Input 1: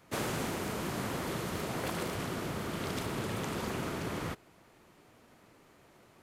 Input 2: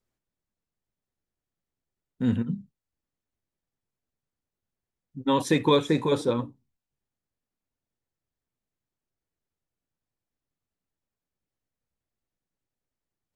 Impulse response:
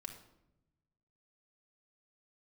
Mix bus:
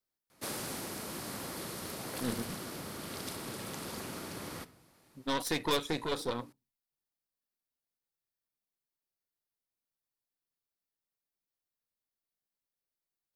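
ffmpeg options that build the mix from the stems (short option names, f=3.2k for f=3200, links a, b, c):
-filter_complex "[0:a]lowpass=9.7k,highshelf=f=7.4k:g=11.5,adelay=300,volume=-9dB,asplit=2[a][b];[b]volume=-3.5dB[c];[1:a]lowshelf=f=350:g=-8.5,aeval=exprs='0.282*(cos(1*acos(clip(val(0)/0.282,-1,1)))-cos(1*PI/2))+0.0562*(cos(6*acos(clip(val(0)/0.282,-1,1)))-cos(6*PI/2))':c=same,asoftclip=type=tanh:threshold=-14dB,volume=-6dB[d];[2:a]atrim=start_sample=2205[e];[c][e]afir=irnorm=-1:irlink=0[f];[a][d][f]amix=inputs=3:normalize=0,aexciter=amount=2.2:drive=1:freq=4k,lowshelf=f=88:g=-6.5"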